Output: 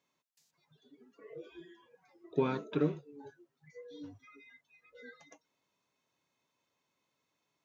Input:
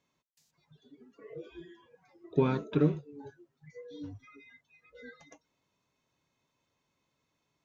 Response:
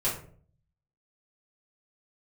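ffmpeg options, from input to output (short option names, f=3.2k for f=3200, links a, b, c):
-af "highpass=f=270:p=1,volume=-1.5dB"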